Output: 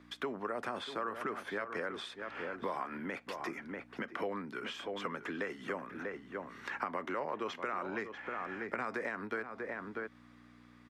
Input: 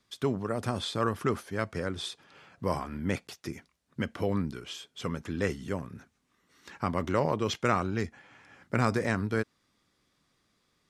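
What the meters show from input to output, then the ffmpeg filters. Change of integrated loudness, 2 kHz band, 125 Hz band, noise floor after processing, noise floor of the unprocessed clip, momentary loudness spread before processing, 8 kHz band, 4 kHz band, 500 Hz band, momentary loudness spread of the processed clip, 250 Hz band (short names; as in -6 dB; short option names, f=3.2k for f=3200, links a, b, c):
-8.0 dB, -1.5 dB, -20.5 dB, -59 dBFS, -74 dBFS, 13 LU, -13.5 dB, -7.5 dB, -7.0 dB, 6 LU, -10.0 dB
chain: -filter_complex "[0:a]highpass=97,acrossover=split=130|820[a][b][c];[c]acontrast=53[d];[a][b][d]amix=inputs=3:normalize=0,aeval=exprs='val(0)+0.00282*(sin(2*PI*60*n/s)+sin(2*PI*2*60*n/s)/2+sin(2*PI*3*60*n/s)/3+sin(2*PI*4*60*n/s)/4+sin(2*PI*5*60*n/s)/5)':c=same,alimiter=limit=-19dB:level=0:latency=1:release=90,equalizer=f=1.9k:t=o:w=0.77:g=2,asplit=2[e][f];[f]adelay=641.4,volume=-11dB,highshelf=f=4k:g=-14.4[g];[e][g]amix=inputs=2:normalize=0,acompressor=threshold=-40dB:ratio=5,acrossover=split=240 2500:gain=0.0794 1 0.158[h][i][j];[h][i][j]amix=inputs=3:normalize=0,volume=6.5dB"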